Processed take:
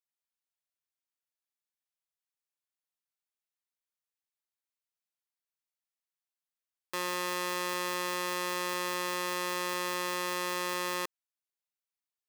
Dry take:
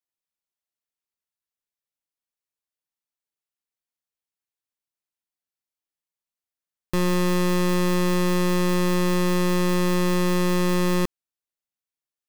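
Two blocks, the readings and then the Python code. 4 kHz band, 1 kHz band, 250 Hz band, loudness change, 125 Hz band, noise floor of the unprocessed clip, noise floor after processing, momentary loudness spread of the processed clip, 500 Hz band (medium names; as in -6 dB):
-4.0 dB, -4.5 dB, -20.0 dB, -10.0 dB, under -25 dB, under -85 dBFS, under -85 dBFS, 2 LU, -12.5 dB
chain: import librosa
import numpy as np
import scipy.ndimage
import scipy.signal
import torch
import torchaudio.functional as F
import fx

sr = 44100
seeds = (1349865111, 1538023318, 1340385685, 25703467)

y = scipy.signal.sosfilt(scipy.signal.butter(2, 670.0, 'highpass', fs=sr, output='sos'), x)
y = y * 10.0 ** (-4.0 / 20.0)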